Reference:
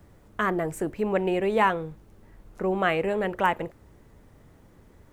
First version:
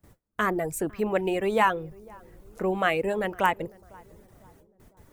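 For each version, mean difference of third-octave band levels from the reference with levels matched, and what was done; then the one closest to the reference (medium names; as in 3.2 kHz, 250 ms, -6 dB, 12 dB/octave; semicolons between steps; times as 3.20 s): 3.5 dB: gate with hold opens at -44 dBFS; reverb removal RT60 0.6 s; treble shelf 6.3 kHz +10 dB; on a send: filtered feedback delay 502 ms, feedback 52%, low-pass 910 Hz, level -23 dB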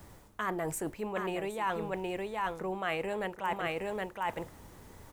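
10.5 dB: peaking EQ 910 Hz +6 dB 0.7 oct; delay 768 ms -6.5 dB; reverse; compression 6:1, threshold -33 dBFS, peak gain reduction 18.5 dB; reverse; treble shelf 2.6 kHz +11 dB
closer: first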